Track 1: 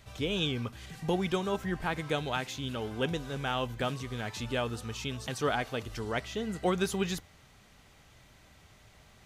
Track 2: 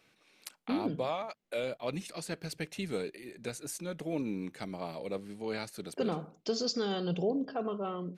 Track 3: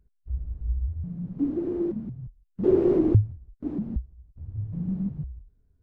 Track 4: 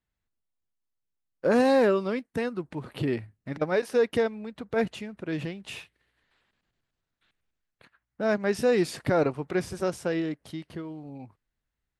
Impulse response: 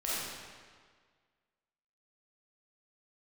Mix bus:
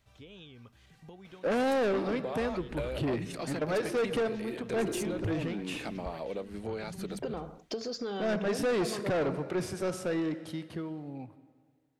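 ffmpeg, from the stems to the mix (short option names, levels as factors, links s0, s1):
-filter_complex "[0:a]acrossover=split=5100[s0][s1];[s1]acompressor=threshold=0.00112:ratio=4:attack=1:release=60[s2];[s0][s2]amix=inputs=2:normalize=0,acompressor=threshold=0.0224:ratio=6,volume=0.2[s3];[1:a]equalizer=f=700:w=0.32:g=7.5,acompressor=threshold=0.0178:ratio=6,adelay=1250,volume=1.26[s4];[2:a]adelay=2100,volume=0.2[s5];[3:a]highpass=f=80:w=0.5412,highpass=f=80:w=1.3066,volume=0.944,asplit=2[s6][s7];[s7]volume=0.1[s8];[4:a]atrim=start_sample=2205[s9];[s8][s9]afir=irnorm=-1:irlink=0[s10];[s3][s4][s5][s6][s10]amix=inputs=5:normalize=0,asoftclip=type=tanh:threshold=0.0562"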